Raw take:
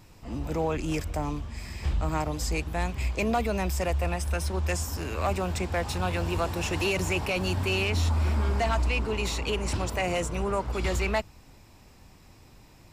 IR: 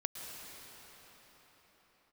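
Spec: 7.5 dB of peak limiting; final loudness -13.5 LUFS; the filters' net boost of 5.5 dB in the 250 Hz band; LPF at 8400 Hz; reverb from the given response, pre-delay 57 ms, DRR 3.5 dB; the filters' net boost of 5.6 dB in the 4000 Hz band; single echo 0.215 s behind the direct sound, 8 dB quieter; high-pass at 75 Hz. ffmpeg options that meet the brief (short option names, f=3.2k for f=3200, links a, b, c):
-filter_complex "[0:a]highpass=75,lowpass=8.4k,equalizer=f=250:t=o:g=8,equalizer=f=4k:t=o:g=8,alimiter=limit=-21dB:level=0:latency=1,aecho=1:1:215:0.398,asplit=2[a][b];[1:a]atrim=start_sample=2205,adelay=57[c];[b][c]afir=irnorm=-1:irlink=0,volume=-4.5dB[d];[a][d]amix=inputs=2:normalize=0,volume=14.5dB"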